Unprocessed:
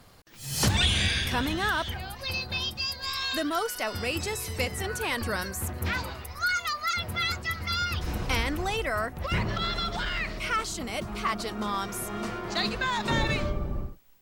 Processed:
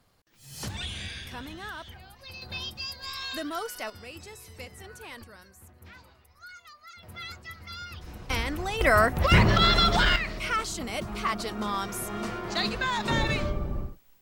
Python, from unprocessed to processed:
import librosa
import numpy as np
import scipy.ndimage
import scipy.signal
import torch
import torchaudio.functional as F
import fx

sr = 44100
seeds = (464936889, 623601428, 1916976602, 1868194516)

y = fx.gain(x, sr, db=fx.steps((0.0, -12.0), (2.42, -5.0), (3.9, -13.5), (5.24, -20.0), (7.03, -11.5), (8.3, -2.0), (8.81, 9.0), (10.16, 0.0)))